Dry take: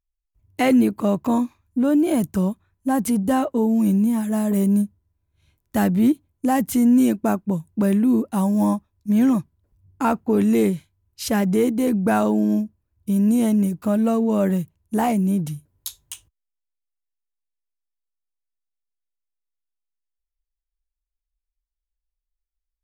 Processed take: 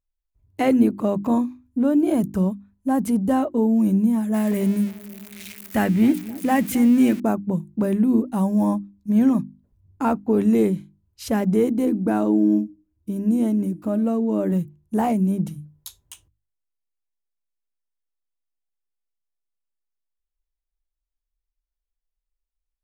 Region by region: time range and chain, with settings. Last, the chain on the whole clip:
4.34–7.20 s: zero-crossing glitches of -23 dBFS + peaking EQ 2.2 kHz +10.5 dB 1.2 oct + filtered feedback delay 263 ms, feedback 61%, low-pass 1.2 kHz, level -17 dB
11.85–14.52 s: peaking EQ 310 Hz +12 dB 0.38 oct + feedback comb 310 Hz, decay 0.37 s, mix 40%
whole clip: tilt shelf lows +4 dB, about 1.2 kHz; hum notches 50/100/150/200/250/300/350 Hz; trim -3 dB

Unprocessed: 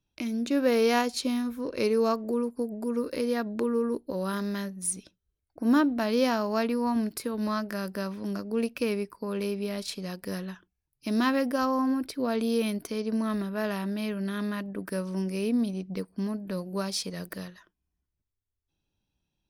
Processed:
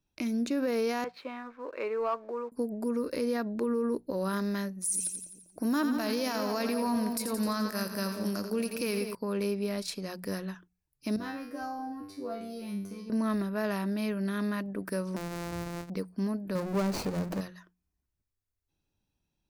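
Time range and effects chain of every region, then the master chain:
1.04–2.52 s: band-pass 740–2600 Hz + distance through air 320 m + waveshaping leveller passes 1
4.84–9.15 s: treble shelf 3.2 kHz +11.5 dB + two-band feedback delay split 880 Hz, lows 196 ms, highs 86 ms, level -9 dB
11.16–13.10 s: bass shelf 340 Hz +12 dB + feedback comb 98 Hz, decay 0.51 s, mix 100%
15.16–15.90 s: sorted samples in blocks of 256 samples + compression 8:1, threshold -32 dBFS + loudspeaker Doppler distortion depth 0.94 ms
16.55–17.41 s: median filter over 25 samples + power-law waveshaper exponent 0.5
whole clip: peaking EQ 3.2 kHz -5.5 dB 0.41 oct; hum notches 60/120/180 Hz; peak limiter -22 dBFS

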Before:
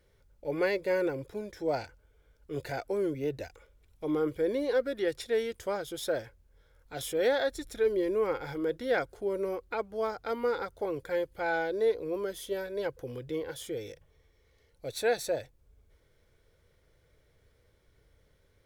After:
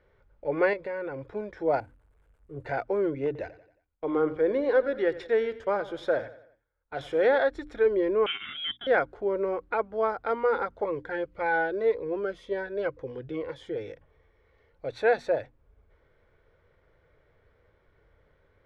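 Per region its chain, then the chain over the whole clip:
0.73–1.29 s: peaking EQ 380 Hz -4.5 dB + band-stop 6.1 kHz, Q 16 + compression 5:1, threshold -35 dBFS
1.80–2.66 s: zero-crossing glitches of -36 dBFS + FFT filter 120 Hz 0 dB, 5.5 kHz -29 dB, 8.5 kHz -12 dB
3.26–7.39 s: gate -50 dBFS, range -21 dB + hum notches 50/100/150 Hz + feedback delay 90 ms, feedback 45%, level -16 dB
8.26–8.87 s: gate -44 dBFS, range -25 dB + frequency inversion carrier 3.6 kHz
10.84–13.76 s: low-pass 11 kHz + dynamic bell 1.8 kHz, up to +3 dB, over -45 dBFS, Q 1.1 + Shepard-style phaser falling 1.9 Hz
whole clip: low-pass 1.4 kHz 12 dB/octave; tilt shelf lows -5.5 dB, about 720 Hz; hum notches 60/120/180/240/300 Hz; trim +6.5 dB

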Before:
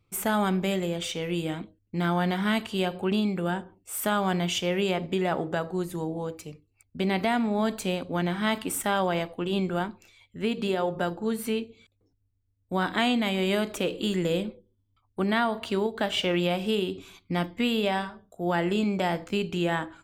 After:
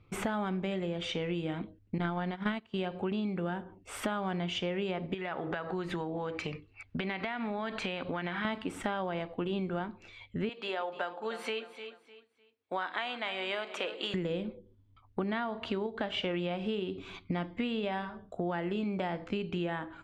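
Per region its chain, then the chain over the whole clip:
1.98–2.74 s: gate -27 dBFS, range -15 dB + transient shaper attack +12 dB, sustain -1 dB
5.14–8.45 s: peaking EQ 2.1 kHz +12.5 dB 2.9 oct + compression 3:1, threshold -36 dBFS
10.49–14.14 s: high-pass 700 Hz + feedback delay 302 ms, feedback 29%, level -16 dB
whole clip: low-pass 3.1 kHz 12 dB/octave; compression 6:1, threshold -40 dBFS; trim +8 dB

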